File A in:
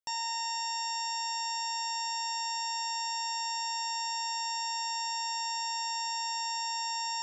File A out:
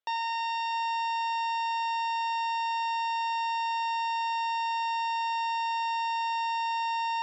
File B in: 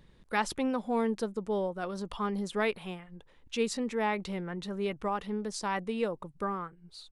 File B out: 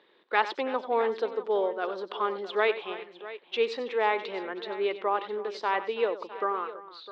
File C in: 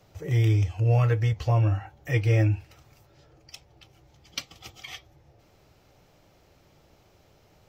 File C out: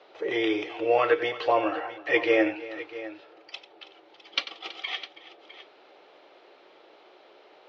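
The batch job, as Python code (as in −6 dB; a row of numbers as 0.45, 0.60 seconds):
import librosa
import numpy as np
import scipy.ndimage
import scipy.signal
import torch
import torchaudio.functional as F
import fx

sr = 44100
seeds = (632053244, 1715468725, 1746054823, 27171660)

p1 = scipy.signal.sosfilt(scipy.signal.ellip(3, 1.0, 60, [360.0, 3800.0], 'bandpass', fs=sr, output='sos'), x)
p2 = p1 + fx.echo_multitap(p1, sr, ms=(93, 326, 657), db=(-13.5, -17.5, -15.5), dry=0)
y = p2 * 10.0 ** (-30 / 20.0) / np.sqrt(np.mean(np.square(p2)))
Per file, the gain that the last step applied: +6.5, +5.5, +8.5 decibels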